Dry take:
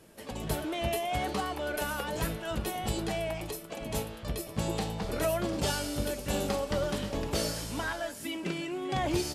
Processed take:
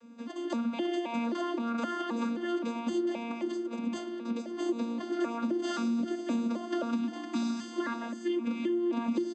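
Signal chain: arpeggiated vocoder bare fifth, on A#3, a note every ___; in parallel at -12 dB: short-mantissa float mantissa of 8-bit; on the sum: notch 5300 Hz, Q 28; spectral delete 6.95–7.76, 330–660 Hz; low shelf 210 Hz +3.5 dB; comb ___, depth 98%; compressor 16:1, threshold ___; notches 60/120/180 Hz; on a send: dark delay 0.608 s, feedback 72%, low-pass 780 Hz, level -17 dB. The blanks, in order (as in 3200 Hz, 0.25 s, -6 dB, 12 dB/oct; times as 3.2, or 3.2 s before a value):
0.262 s, 3.5 ms, -27 dBFS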